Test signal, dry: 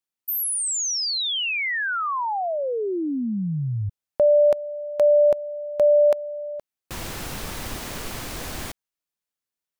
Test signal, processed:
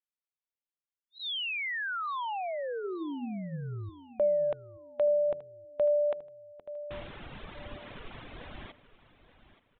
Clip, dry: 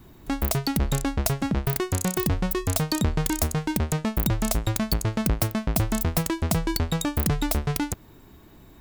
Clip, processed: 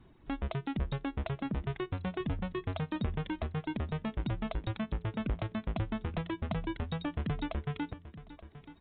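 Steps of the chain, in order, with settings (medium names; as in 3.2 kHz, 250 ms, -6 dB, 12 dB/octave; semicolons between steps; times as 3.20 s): resampled via 8 kHz; reverb removal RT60 1.2 s; de-hum 86.39 Hz, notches 5; on a send: feedback delay 878 ms, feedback 31%, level -15.5 dB; on the sum: trim -8.5 dB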